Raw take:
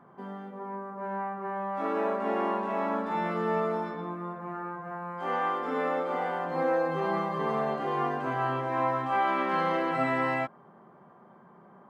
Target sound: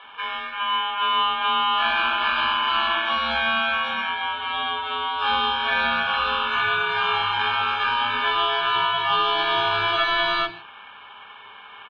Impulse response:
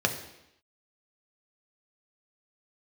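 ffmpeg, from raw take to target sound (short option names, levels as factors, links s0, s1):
-filter_complex "[0:a]equalizer=f=125:t=o:w=1:g=-8,equalizer=f=250:t=o:w=1:g=12,equalizer=f=500:t=o:w=1:g=3,equalizer=f=1000:t=o:w=1:g=11,equalizer=f=2000:t=o:w=1:g=8,equalizer=f=4000:t=o:w=1:g=-4,acompressor=threshold=0.0891:ratio=6,aeval=exprs='val(0)*sin(2*PI*2000*n/s)':c=same,acrossover=split=390[s0][s1];[s0]adelay=40[s2];[s2][s1]amix=inputs=2:normalize=0,asplit=2[s3][s4];[1:a]atrim=start_sample=2205,afade=t=out:st=0.22:d=0.01,atrim=end_sample=10143[s5];[s4][s5]afir=irnorm=-1:irlink=0,volume=0.422[s6];[s3][s6]amix=inputs=2:normalize=0"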